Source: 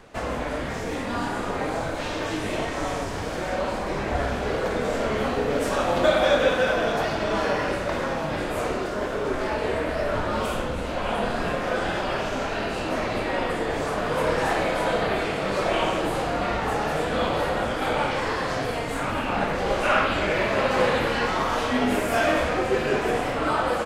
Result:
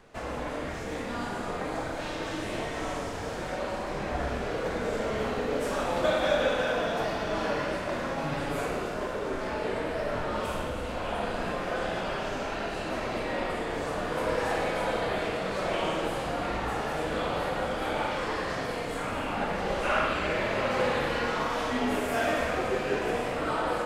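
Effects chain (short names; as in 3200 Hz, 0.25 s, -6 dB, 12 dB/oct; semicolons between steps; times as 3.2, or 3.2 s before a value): 8.17–8.66 comb 7.1 ms, depth 80%; on a send: reverb RT60 2.0 s, pre-delay 37 ms, DRR 3 dB; on the sum: gain -7 dB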